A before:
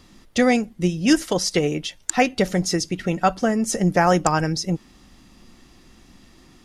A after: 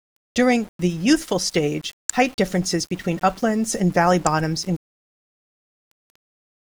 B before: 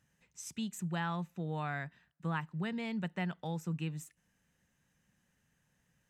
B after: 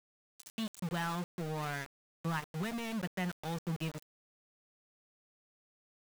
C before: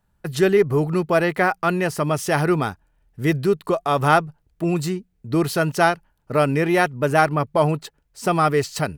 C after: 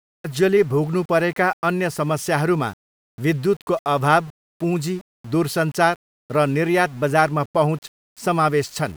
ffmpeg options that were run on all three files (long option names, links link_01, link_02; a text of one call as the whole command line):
ffmpeg -i in.wav -af "aeval=exprs='val(0)*gte(abs(val(0)),0.0126)':channel_layout=same" out.wav